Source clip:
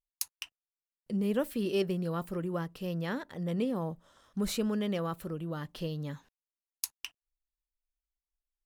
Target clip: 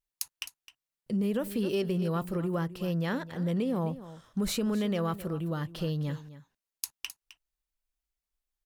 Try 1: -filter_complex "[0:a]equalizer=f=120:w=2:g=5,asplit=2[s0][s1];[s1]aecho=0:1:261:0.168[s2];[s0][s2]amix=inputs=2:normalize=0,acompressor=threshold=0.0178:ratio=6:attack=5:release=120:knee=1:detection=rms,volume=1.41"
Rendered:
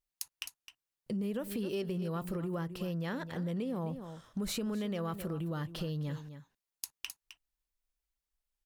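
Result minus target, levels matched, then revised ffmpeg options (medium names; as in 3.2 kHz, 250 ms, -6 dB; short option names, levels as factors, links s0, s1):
compression: peak gain reduction +6 dB
-filter_complex "[0:a]equalizer=f=120:w=2:g=5,asplit=2[s0][s1];[s1]aecho=0:1:261:0.168[s2];[s0][s2]amix=inputs=2:normalize=0,acompressor=threshold=0.0422:ratio=6:attack=5:release=120:knee=1:detection=rms,volume=1.41"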